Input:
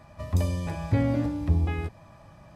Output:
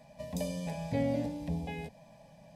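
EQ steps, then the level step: bass shelf 64 Hz -10 dB; static phaser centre 340 Hz, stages 6; -1.0 dB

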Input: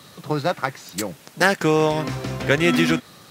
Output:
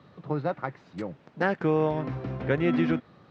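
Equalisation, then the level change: tape spacing loss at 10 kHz 43 dB; -4.0 dB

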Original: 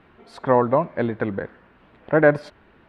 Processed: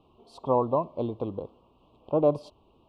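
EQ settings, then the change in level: elliptic band-stop 1.1–2.8 kHz, stop band 70 dB; peaking EQ 190 Hz -6 dB 0.46 oct; -5.5 dB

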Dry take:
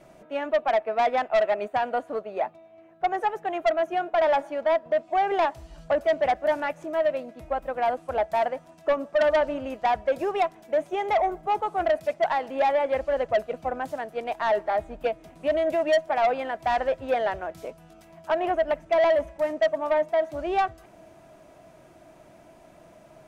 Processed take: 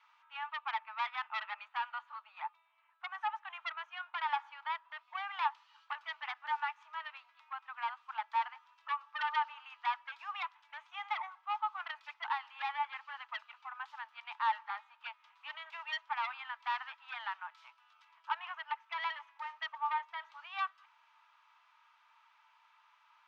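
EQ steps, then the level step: rippled Chebyshev high-pass 860 Hz, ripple 6 dB; distance through air 220 m; 0.0 dB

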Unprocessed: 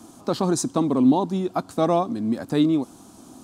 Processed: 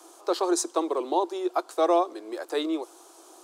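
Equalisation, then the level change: Chebyshev high-pass 340 Hz, order 6; 0.0 dB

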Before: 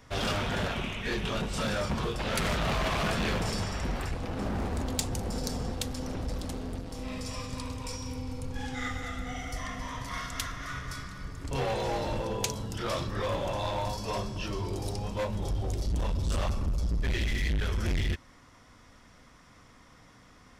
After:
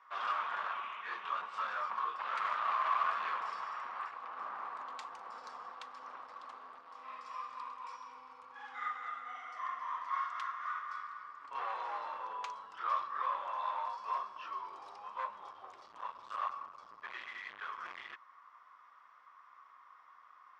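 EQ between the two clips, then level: ladder band-pass 1.2 kHz, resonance 75%; +5.0 dB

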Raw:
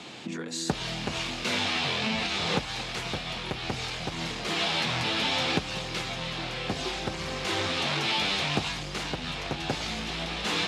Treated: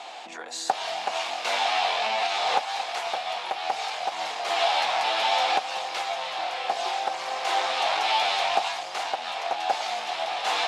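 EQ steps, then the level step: resonant high-pass 740 Hz, resonance Q 4.9; 0.0 dB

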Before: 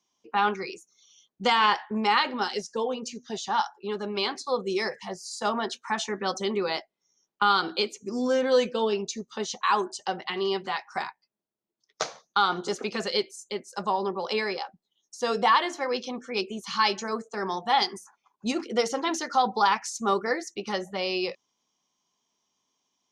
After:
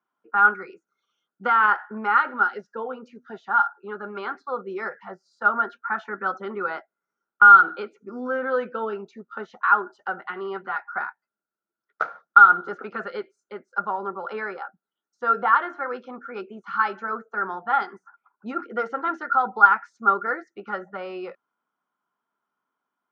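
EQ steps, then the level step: high-pass 160 Hz; resonant low-pass 1.4 kHz, resonance Q 15; peaking EQ 1.1 kHz -4 dB 0.37 oct; -4.5 dB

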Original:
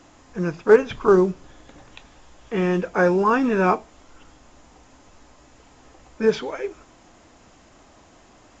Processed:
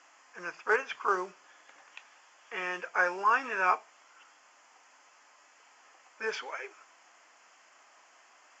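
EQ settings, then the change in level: high-pass 1.2 kHz 12 dB/octave; distance through air 61 m; peaking EQ 3.8 kHz -15 dB 0.28 oct; 0.0 dB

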